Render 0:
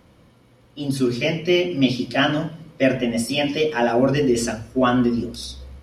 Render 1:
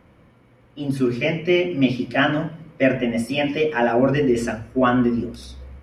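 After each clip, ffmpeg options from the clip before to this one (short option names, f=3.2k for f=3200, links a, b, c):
-af "highshelf=f=3k:t=q:w=1.5:g=-8"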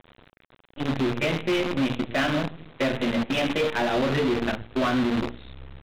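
-af "acompressor=threshold=-20dB:ratio=2.5,aresample=8000,acrusher=bits=5:dc=4:mix=0:aa=0.000001,aresample=44100,asoftclip=type=hard:threshold=-19.5dB"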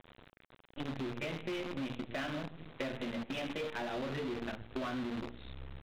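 -af "acompressor=threshold=-32dB:ratio=6,volume=-4.5dB"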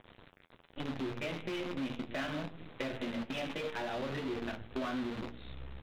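-af "flanger=delay=9.7:depth=2.7:regen=-51:speed=0.74:shape=sinusoidal,volume=5dB"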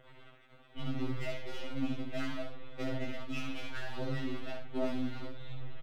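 -af "aeval=exprs='if(lt(val(0),0),0.447*val(0),val(0))':c=same,aecho=1:1:14|70:0.596|0.562,afftfilt=real='re*2.45*eq(mod(b,6),0)':imag='im*2.45*eq(mod(b,6),0)':win_size=2048:overlap=0.75,volume=1.5dB"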